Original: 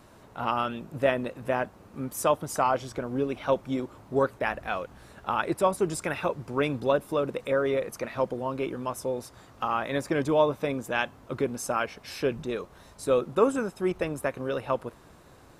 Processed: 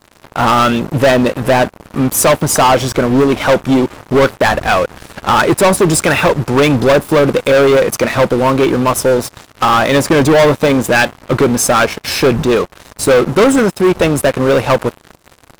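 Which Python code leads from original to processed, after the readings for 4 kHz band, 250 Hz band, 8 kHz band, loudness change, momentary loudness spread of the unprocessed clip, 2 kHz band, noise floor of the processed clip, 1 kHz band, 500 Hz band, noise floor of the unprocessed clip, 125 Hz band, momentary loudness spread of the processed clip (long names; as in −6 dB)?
+21.0 dB, +18.5 dB, +22.0 dB, +17.0 dB, 9 LU, +18.0 dB, −47 dBFS, +16.0 dB, +16.0 dB, −54 dBFS, +19.5 dB, 5 LU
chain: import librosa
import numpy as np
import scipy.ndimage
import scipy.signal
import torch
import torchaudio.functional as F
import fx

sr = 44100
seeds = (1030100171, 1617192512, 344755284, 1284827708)

y = fx.leveller(x, sr, passes=5)
y = y * 10.0 ** (4.5 / 20.0)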